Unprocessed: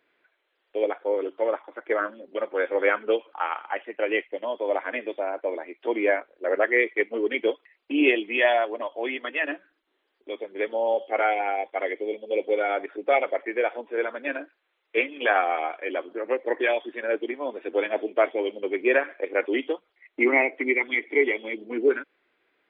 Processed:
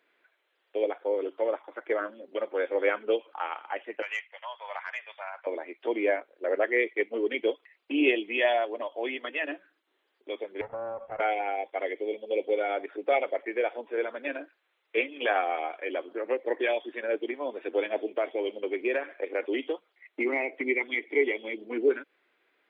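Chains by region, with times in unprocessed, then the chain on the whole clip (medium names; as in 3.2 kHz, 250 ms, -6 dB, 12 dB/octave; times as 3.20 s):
4.02–5.47 s: high-pass 960 Hz 24 dB/octave + overdrive pedal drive 8 dB, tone 2.1 kHz, clips at -14 dBFS
10.61–11.20 s: comb filter that takes the minimum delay 1.5 ms + low-pass 1.7 kHz 24 dB/octave + compression 5:1, threshold -31 dBFS
18.13–20.61 s: compression 2:1, threshold -22 dBFS + high-pass 160 Hz
whole clip: high-pass 290 Hz 6 dB/octave; dynamic bell 1.4 kHz, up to -7 dB, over -37 dBFS, Q 0.73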